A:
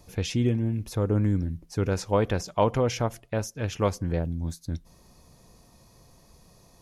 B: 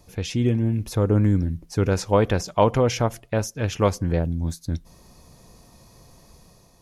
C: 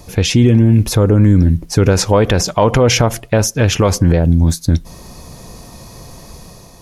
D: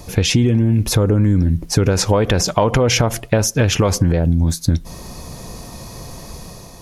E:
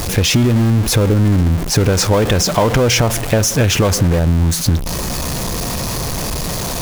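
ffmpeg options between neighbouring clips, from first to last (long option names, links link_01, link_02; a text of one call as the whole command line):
ffmpeg -i in.wav -af "dynaudnorm=framelen=100:gausssize=9:maxgain=5dB" out.wav
ffmpeg -i in.wav -filter_complex "[0:a]asplit=2[link_01][link_02];[link_02]asoftclip=type=tanh:threshold=-14dB,volume=-10.5dB[link_03];[link_01][link_03]amix=inputs=2:normalize=0,alimiter=level_in=14dB:limit=-1dB:release=50:level=0:latency=1,volume=-1dB" out.wav
ffmpeg -i in.wav -af "acompressor=threshold=-13dB:ratio=6,volume=2dB" out.wav
ffmpeg -i in.wav -af "aeval=exprs='val(0)+0.5*0.168*sgn(val(0))':channel_layout=same,volume=-1dB" out.wav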